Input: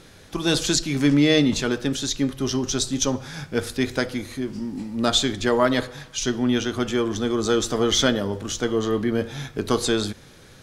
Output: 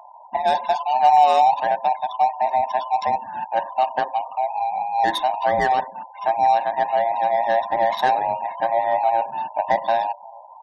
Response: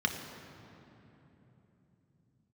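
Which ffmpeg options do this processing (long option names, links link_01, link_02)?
-filter_complex "[0:a]afftfilt=real='real(if(between(b,1,1008),(2*floor((b-1)/48)+1)*48-b,b),0)':imag='imag(if(between(b,1,1008),(2*floor((b-1)/48)+1)*48-b,b),0)*if(between(b,1,1008),-1,1)':win_size=2048:overlap=0.75,aecho=1:1:1.1:0.83,asplit=2[link_01][link_02];[link_02]acompressor=threshold=-29dB:ratio=8,volume=-1.5dB[link_03];[link_01][link_03]amix=inputs=2:normalize=0,bandpass=frequency=540:width_type=q:width=0.62:csg=0,asplit=2[link_04][link_05];[link_05]adelay=1196,lowpass=frequency=820:poles=1,volume=-20.5dB,asplit=2[link_06][link_07];[link_07]adelay=1196,lowpass=frequency=820:poles=1,volume=0.2[link_08];[link_06][link_08]amix=inputs=2:normalize=0[link_09];[link_04][link_09]amix=inputs=2:normalize=0,adynamicsmooth=sensitivity=4.5:basefreq=660,afftfilt=real='re*gte(hypot(re,im),0.0158)':imag='im*gte(hypot(re,im),0.0158)':win_size=1024:overlap=0.75"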